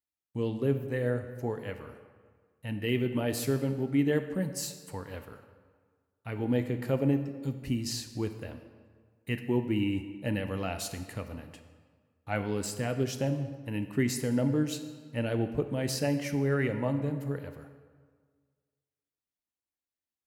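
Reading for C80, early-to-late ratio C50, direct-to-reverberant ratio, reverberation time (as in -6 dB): 11.0 dB, 9.5 dB, 8.0 dB, 1.7 s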